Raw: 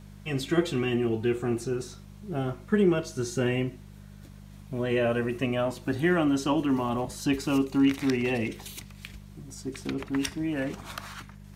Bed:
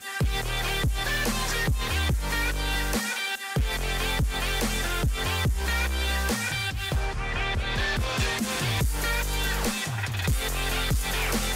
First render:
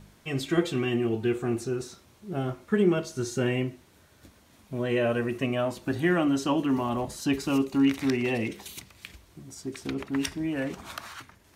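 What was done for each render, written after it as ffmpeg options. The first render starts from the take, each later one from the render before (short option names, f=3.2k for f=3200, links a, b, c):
-af "bandreject=f=50:t=h:w=4,bandreject=f=100:t=h:w=4,bandreject=f=150:t=h:w=4,bandreject=f=200:t=h:w=4"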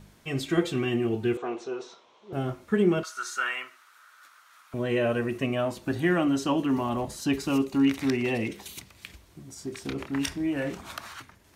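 -filter_complex "[0:a]asettb=1/sr,asplit=3[a][b][c];[a]atrim=end=1.374[d];[b]atrim=start=1.37:end=2.33,asetpts=PTS-STARTPTS,afade=t=in:d=0.004:c=qsin,afade=t=out:st=0.956:d=0.004:c=qsin,highpass=460,equalizer=f=470:t=q:w=4:g=7,equalizer=f=690:t=q:w=4:g=4,equalizer=f=1k:t=q:w=4:g=9,equalizer=f=1.7k:t=q:w=4:g=-4,equalizer=f=3.3k:t=q:w=4:g=5,equalizer=f=4.7k:t=q:w=4:g=-6,lowpass=f=5.4k:w=0.5412,lowpass=f=5.4k:w=1.3066[e];[c]atrim=start=2.326[f];[d][e]acrossfade=d=0.004:c1=hsin:c2=qsin[g];[g][f]acrossfade=d=0.004:c1=qsin:c2=hsin,asettb=1/sr,asplit=3[h][i][j];[h]atrim=end=3.034[k];[i]atrim=start=3.03:end=4.74,asetpts=PTS-STARTPTS,afade=t=in:d=0.004:c=qsin,afade=t=out:st=1.706:d=0.004:c=qsin,highpass=f=1.3k:t=q:w=6.6[l];[j]atrim=start=4.736[m];[k][l]acrossfade=d=0.004:c1=hsin:c2=qsin[n];[n][m]acrossfade=d=0.004:c1=qsin:c2=hsin,asettb=1/sr,asplit=3[o][p][q];[o]atrim=end=9.584[r];[p]atrim=start=9.58:end=10.8,asetpts=PTS-STARTPTS,afade=t=in:d=0.004:c=qsin,afade=t=out:st=1.216:d=0.004:c=qsin,asplit=2[s][t];[t]adelay=28,volume=-7dB[u];[s][u]amix=inputs=2:normalize=0,atrim=end_sample=53802[v];[q]atrim=start=10.796[w];[r][v]acrossfade=d=0.004:c1=hsin:c2=qsin[x];[x][w]acrossfade=d=0.004:c1=qsin:c2=hsin"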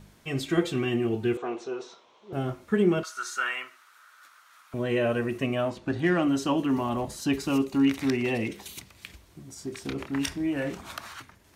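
-filter_complex "[0:a]asettb=1/sr,asplit=3[a][b][c];[a]atrim=end=5.704[d];[b]atrim=start=5.7:end=6.23,asetpts=PTS-STARTPTS,afade=t=in:d=0.004:c=qsin,afade=t=out:st=0.526:d=0.004:c=qsin,adynamicsmooth=sensitivity=8:basefreq=5.1k[e];[c]atrim=start=6.226[f];[d][e]acrossfade=d=0.004:c1=hsin:c2=qsin[g];[g][f]acrossfade=d=0.004:c1=qsin:c2=hsin"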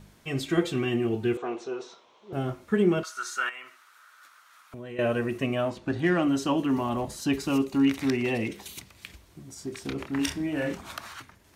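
-filter_complex "[0:a]asettb=1/sr,asplit=3[a][b][c];[a]atrim=end=3.494[d];[b]atrim=start=3.49:end=4.99,asetpts=PTS-STARTPTS,afade=t=in:d=0.004:c=qsin,afade=t=out:st=1.496:d=0.004:c=qsin,acompressor=threshold=-40dB:ratio=3:attack=3.2:release=140:knee=1:detection=peak[e];[c]atrim=start=4.986[f];[d][e]acrossfade=d=0.004:c1=hsin:c2=qsin[g];[g][f]acrossfade=d=0.004:c1=qsin:c2=hsin,asettb=1/sr,asplit=3[h][i][j];[h]atrim=end=10.154[k];[i]atrim=start=10.15:end=10.76,asetpts=PTS-STARTPTS,afade=t=in:d=0.004:c=qsin,afade=t=out:st=0.606:d=0.004:c=qsin,asplit=2[l][m];[m]adelay=39,volume=-5.5dB[n];[l][n]amix=inputs=2:normalize=0,atrim=end_sample=26901[o];[j]atrim=start=10.756[p];[k][o]acrossfade=d=0.004:c1=hsin:c2=qsin[q];[q][p]acrossfade=d=0.004:c1=qsin:c2=hsin"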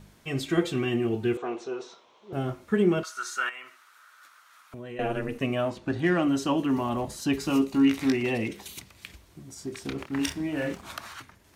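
-filter_complex "[0:a]asplit=3[a][b][c];[a]afade=t=out:st=4.98:d=0.02[d];[b]aeval=exprs='val(0)*sin(2*PI*110*n/s)':c=same,afade=t=in:st=4.98:d=0.02,afade=t=out:st=5.39:d=0.02[e];[c]afade=t=in:st=5.39:d=0.02[f];[d][e][f]amix=inputs=3:normalize=0,asettb=1/sr,asplit=3[g][h][i];[g]atrim=end=7.394[j];[h]atrim=start=7.39:end=8.23,asetpts=PTS-STARTPTS,afade=t=in:d=0.004:c=qsin,afade=t=out:st=0.836:d=0.004:c=qsin,asplit=2[k][l];[l]adelay=19,volume=-7dB[m];[k][m]amix=inputs=2:normalize=0,atrim=end_sample=37044[n];[i]atrim=start=8.226[o];[j][n]acrossfade=d=0.004:c1=hsin:c2=qsin[p];[p][o]acrossfade=d=0.004:c1=qsin:c2=hsin,asettb=1/sr,asplit=3[q][r][s];[q]atrim=end=9.904[t];[r]atrim=start=9.9:end=10.83,asetpts=PTS-STARTPTS,afade=t=in:d=0.004:c=qsin,afade=t=out:st=0.926:d=0.004:c=qsin,aeval=exprs='sgn(val(0))*max(abs(val(0))-0.00335,0)':c=same[u];[s]atrim=start=10.826[v];[t][u]acrossfade=d=0.004:c1=hsin:c2=qsin[w];[w][v]acrossfade=d=0.004:c1=qsin:c2=hsin"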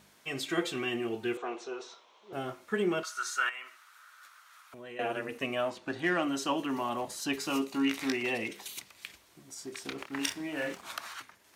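-af "highpass=f=680:p=1"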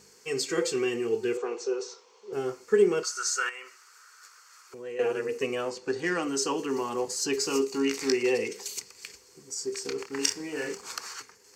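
-af "superequalizer=7b=3.98:8b=0.447:13b=0.631:14b=3.16:15b=3.55"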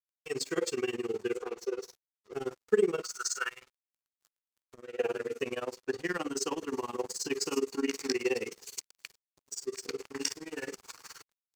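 -af "aeval=exprs='sgn(val(0))*max(abs(val(0))-0.00562,0)':c=same,tremolo=f=19:d=0.94"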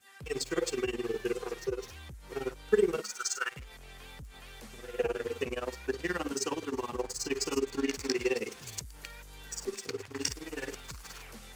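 -filter_complex "[1:a]volume=-22dB[a];[0:a][a]amix=inputs=2:normalize=0"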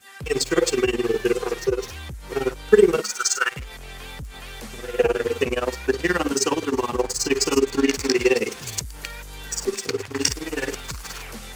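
-af "volume=11.5dB,alimiter=limit=-1dB:level=0:latency=1"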